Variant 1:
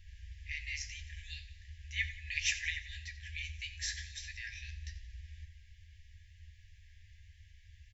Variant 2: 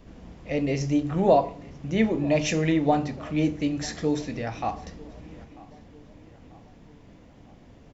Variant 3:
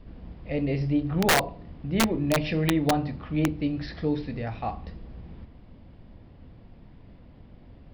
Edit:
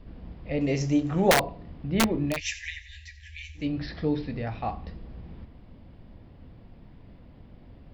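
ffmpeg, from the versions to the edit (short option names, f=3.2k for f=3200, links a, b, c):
-filter_complex "[2:a]asplit=3[a][b][c];[a]atrim=end=0.612[d];[1:a]atrim=start=0.608:end=1.312[e];[b]atrim=start=1.308:end=2.41[f];[0:a]atrim=start=2.25:end=3.7[g];[c]atrim=start=3.54[h];[d][e]acrossfade=d=0.004:c1=hsin:c2=hsin[i];[i][f]acrossfade=d=0.004:c1=hsin:c2=hsin[j];[j][g]acrossfade=d=0.16:c1=tri:c2=tri[k];[k][h]acrossfade=d=0.16:c1=tri:c2=tri"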